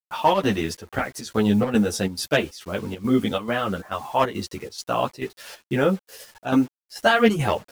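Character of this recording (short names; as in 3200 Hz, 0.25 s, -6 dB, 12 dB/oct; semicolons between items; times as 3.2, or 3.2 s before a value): a quantiser's noise floor 8-bit, dither none; chopped level 2.3 Hz, depth 65%, duty 75%; a shimmering, thickened sound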